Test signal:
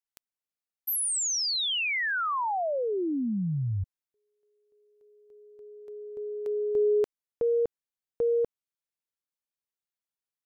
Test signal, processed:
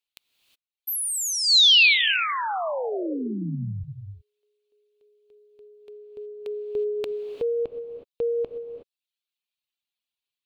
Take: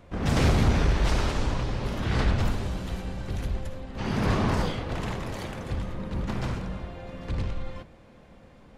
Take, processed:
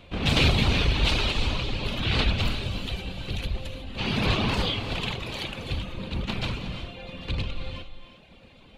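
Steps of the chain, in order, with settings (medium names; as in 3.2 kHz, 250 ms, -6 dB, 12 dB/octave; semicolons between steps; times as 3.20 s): reverb removal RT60 1 s; high-order bell 3.2 kHz +12.5 dB 1.1 oct; gated-style reverb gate 390 ms rising, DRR 8.5 dB; trim +1 dB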